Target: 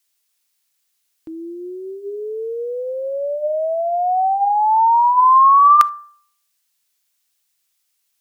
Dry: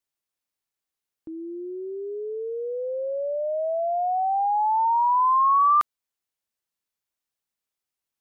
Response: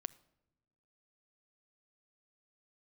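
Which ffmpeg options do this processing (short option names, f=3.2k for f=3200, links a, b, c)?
-filter_complex "[0:a]tiltshelf=f=1.5k:g=-8,bandreject=f=196.7:t=h:w=4,bandreject=f=393.4:t=h:w=4,bandreject=f=590.1:t=h:w=4,bandreject=f=786.8:t=h:w=4,bandreject=f=983.5:t=h:w=4,bandreject=f=1.1802k:t=h:w=4,bandreject=f=1.3769k:t=h:w=4,bandreject=f=1.5736k:t=h:w=4,bandreject=f=1.7703k:t=h:w=4,asplit=2[a][b];[1:a]atrim=start_sample=2205,atrim=end_sample=3528[c];[b][c]afir=irnorm=-1:irlink=0,volume=12dB[d];[a][d]amix=inputs=2:normalize=0,volume=-1dB"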